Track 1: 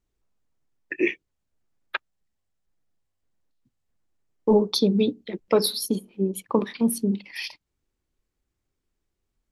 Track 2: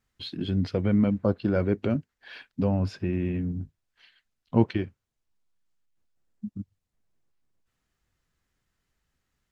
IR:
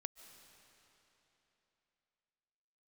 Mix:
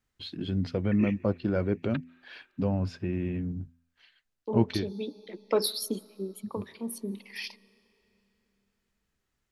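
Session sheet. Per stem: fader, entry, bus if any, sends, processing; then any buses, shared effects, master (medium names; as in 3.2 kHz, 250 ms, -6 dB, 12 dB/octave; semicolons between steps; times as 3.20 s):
-6.0 dB, 0.00 s, send -11.5 dB, high-pass 230 Hz; auto duck -11 dB, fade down 0.35 s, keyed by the second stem
-3.0 dB, 0.00 s, no send, de-hum 84.03 Hz, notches 3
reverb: on, RT60 3.4 s, pre-delay 105 ms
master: none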